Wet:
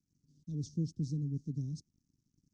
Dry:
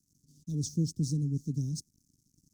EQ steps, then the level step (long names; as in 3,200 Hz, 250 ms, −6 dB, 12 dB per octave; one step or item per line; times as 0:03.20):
high-frequency loss of the air 140 metres
−5.0 dB